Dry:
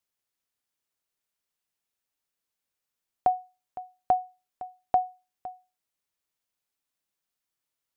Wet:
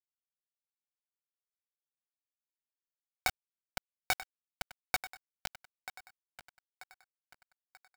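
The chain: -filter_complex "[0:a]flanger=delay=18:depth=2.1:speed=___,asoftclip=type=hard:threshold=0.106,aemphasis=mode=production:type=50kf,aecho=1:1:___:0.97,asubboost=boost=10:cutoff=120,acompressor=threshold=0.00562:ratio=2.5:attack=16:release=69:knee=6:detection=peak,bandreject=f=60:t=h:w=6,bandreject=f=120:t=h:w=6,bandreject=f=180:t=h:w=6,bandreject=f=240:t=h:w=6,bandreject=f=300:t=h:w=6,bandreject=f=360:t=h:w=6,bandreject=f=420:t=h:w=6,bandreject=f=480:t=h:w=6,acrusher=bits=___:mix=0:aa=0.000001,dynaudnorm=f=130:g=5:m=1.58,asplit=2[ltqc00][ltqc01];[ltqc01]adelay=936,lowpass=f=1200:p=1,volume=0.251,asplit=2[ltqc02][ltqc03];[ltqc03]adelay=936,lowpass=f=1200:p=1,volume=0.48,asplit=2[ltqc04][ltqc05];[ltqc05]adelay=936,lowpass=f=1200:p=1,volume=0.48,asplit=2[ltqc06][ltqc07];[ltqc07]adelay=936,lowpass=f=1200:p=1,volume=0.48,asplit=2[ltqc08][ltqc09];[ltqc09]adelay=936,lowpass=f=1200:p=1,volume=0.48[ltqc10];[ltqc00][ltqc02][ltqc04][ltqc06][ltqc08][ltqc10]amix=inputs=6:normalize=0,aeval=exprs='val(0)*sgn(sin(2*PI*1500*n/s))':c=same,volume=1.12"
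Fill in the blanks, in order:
0.63, 5.1, 5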